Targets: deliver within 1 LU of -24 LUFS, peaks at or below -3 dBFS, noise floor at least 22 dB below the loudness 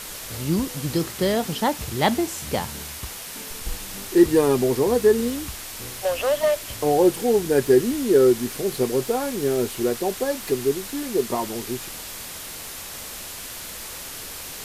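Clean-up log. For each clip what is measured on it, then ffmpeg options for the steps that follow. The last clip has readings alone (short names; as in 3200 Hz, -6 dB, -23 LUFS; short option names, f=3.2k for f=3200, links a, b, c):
noise floor -36 dBFS; noise floor target -46 dBFS; loudness -23.5 LUFS; peak -5.0 dBFS; loudness target -24.0 LUFS
-> -af "afftdn=nr=10:nf=-36"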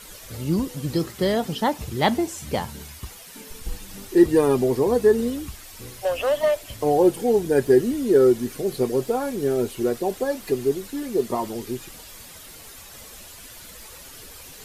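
noise floor -43 dBFS; noise floor target -45 dBFS
-> -af "afftdn=nr=6:nf=-43"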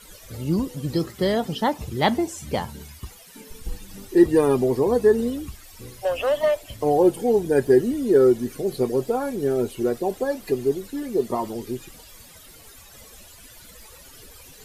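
noise floor -47 dBFS; loudness -22.5 LUFS; peak -5.0 dBFS; loudness target -24.0 LUFS
-> -af "volume=-1.5dB"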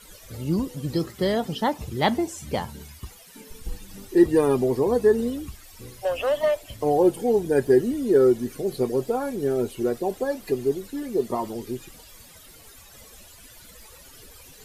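loudness -24.0 LUFS; peak -6.5 dBFS; noise floor -49 dBFS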